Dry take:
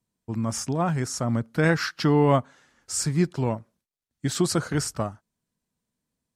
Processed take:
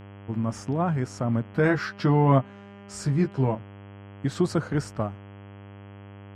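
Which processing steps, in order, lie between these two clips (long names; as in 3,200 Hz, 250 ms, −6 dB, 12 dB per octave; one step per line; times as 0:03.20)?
low-pass filter 1,500 Hz 6 dB per octave
hum with harmonics 100 Hz, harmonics 33, −44 dBFS −6 dB per octave
0:01.52–0:03.55: double-tracking delay 15 ms −5 dB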